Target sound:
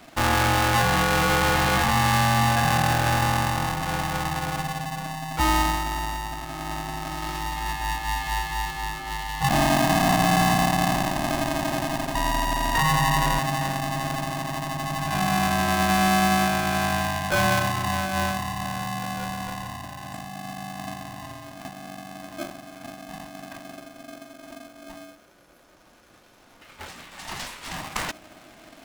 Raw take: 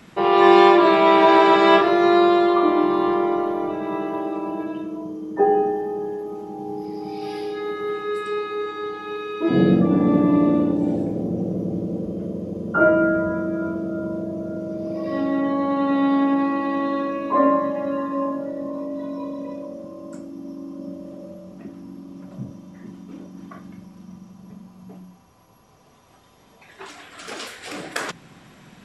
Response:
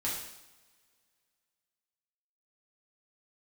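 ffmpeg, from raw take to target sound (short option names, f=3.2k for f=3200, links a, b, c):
-filter_complex "[0:a]asettb=1/sr,asplit=3[a][b][c];[a]atrim=end=12.154[d];[b]atrim=start=12.15:end=13.39,asetpts=PTS-STARTPTS,afade=t=in:d=0.004:c=qsin,afade=t=out:st=1.236:d=0.004:c=qsin,aeval=exprs='val(0)+0.0891*sin(2*PI*510*n/s)':c=same[e];[c]atrim=start=13.386[f];[d][e]acrossfade=d=0.004:c1=hsin:c2=qsin[g];[g][f]acrossfade=d=0.004:c1=qsin:c2=hsin,alimiter=limit=-12.5dB:level=0:latency=1:release=19,aeval=exprs='val(0)*sgn(sin(2*PI*470*n/s))':c=same,volume=-1dB"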